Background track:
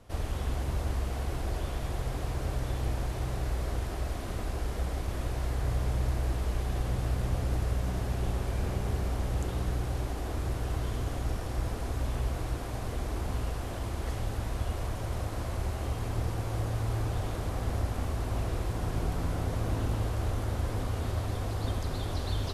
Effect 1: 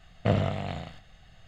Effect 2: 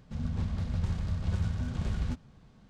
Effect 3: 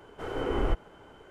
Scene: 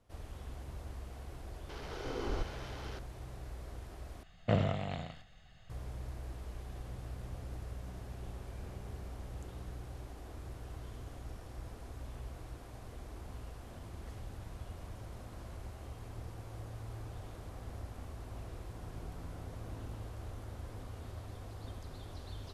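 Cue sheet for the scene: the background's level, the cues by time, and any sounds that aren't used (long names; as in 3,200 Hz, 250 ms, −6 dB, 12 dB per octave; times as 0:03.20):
background track −14 dB
0:01.69: mix in 3 −9 dB + linear delta modulator 32 kbit/s, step −32.5 dBFS
0:04.23: overwrite with 1 −5 dB
0:13.56: mix in 2 −17 dB + soft clipping −32 dBFS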